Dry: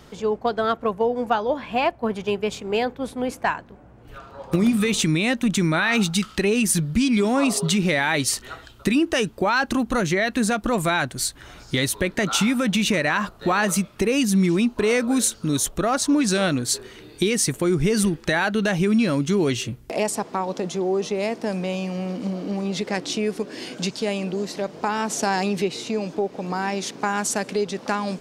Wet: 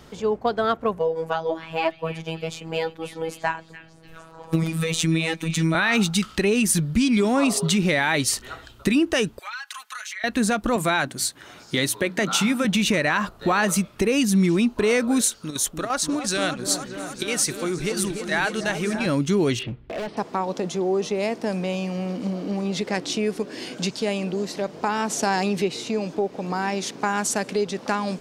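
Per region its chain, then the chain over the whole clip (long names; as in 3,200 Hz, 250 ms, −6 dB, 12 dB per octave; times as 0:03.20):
0:00.99–0:05.75: phases set to zero 162 Hz + echo through a band-pass that steps 294 ms, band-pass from 2,500 Hz, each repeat 0.7 octaves, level −10.5 dB
0:09.39–0:10.24: high-pass filter 1,300 Hz 24 dB per octave + comb filter 4.7 ms, depth 84% + downward compressor, threshold −31 dBFS
0:10.76–0:12.65: high-pass filter 140 Hz + mains-hum notches 60/120/180/240/300 Hz
0:15.21–0:19.06: low-shelf EQ 440 Hz −10 dB + square-wave tremolo 2.9 Hz, depth 60%, duty 85% + echo whose low-pass opens from repeat to repeat 294 ms, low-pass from 750 Hz, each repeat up 1 octave, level −6 dB
0:19.59–0:20.17: inverse Chebyshev low-pass filter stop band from 6,700 Hz + gain into a clipping stage and back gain 26.5 dB
whole clip: no processing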